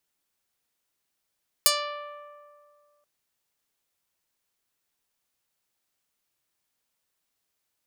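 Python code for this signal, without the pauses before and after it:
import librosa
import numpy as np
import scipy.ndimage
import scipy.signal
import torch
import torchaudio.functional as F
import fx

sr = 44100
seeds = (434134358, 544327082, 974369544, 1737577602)

y = fx.pluck(sr, length_s=1.38, note=74, decay_s=2.16, pick=0.3, brightness='medium')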